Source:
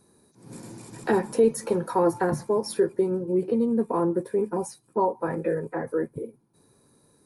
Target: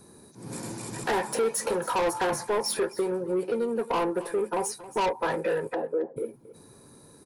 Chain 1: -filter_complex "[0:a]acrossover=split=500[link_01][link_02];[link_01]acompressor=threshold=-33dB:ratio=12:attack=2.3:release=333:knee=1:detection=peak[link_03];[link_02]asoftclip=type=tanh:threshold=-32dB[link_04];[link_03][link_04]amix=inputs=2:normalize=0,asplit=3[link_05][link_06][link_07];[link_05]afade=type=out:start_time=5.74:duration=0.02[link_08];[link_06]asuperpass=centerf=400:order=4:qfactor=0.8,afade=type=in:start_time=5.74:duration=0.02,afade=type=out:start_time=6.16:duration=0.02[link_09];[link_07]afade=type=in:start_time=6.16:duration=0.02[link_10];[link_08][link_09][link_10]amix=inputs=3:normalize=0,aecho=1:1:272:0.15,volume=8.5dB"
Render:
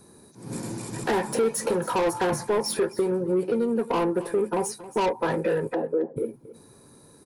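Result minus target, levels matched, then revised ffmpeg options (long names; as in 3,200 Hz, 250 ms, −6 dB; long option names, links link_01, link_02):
downward compressor: peak gain reduction −8.5 dB
-filter_complex "[0:a]acrossover=split=500[link_01][link_02];[link_01]acompressor=threshold=-42.5dB:ratio=12:attack=2.3:release=333:knee=1:detection=peak[link_03];[link_02]asoftclip=type=tanh:threshold=-32dB[link_04];[link_03][link_04]amix=inputs=2:normalize=0,asplit=3[link_05][link_06][link_07];[link_05]afade=type=out:start_time=5.74:duration=0.02[link_08];[link_06]asuperpass=centerf=400:order=4:qfactor=0.8,afade=type=in:start_time=5.74:duration=0.02,afade=type=out:start_time=6.16:duration=0.02[link_09];[link_07]afade=type=in:start_time=6.16:duration=0.02[link_10];[link_08][link_09][link_10]amix=inputs=3:normalize=0,aecho=1:1:272:0.15,volume=8.5dB"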